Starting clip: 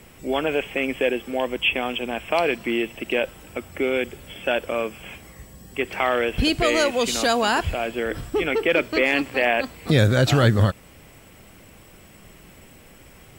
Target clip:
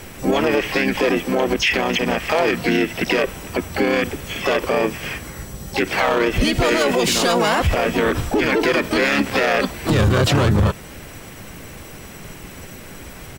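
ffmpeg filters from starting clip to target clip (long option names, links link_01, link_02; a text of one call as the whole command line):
ffmpeg -i in.wav -filter_complex "[0:a]volume=13.5dB,asoftclip=hard,volume=-13.5dB,asplit=4[link_01][link_02][link_03][link_04];[link_02]asetrate=33038,aresample=44100,atempo=1.33484,volume=-2dB[link_05];[link_03]asetrate=58866,aresample=44100,atempo=0.749154,volume=-15dB[link_06];[link_04]asetrate=88200,aresample=44100,atempo=0.5,volume=-13dB[link_07];[link_01][link_05][link_06][link_07]amix=inputs=4:normalize=0,alimiter=level_in=17dB:limit=-1dB:release=50:level=0:latency=1,volume=-8dB" out.wav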